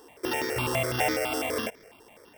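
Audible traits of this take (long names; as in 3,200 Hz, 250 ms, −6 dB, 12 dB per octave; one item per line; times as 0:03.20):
a buzz of ramps at a fixed pitch in blocks of 16 samples
notches that jump at a steady rate 12 Hz 610–2,800 Hz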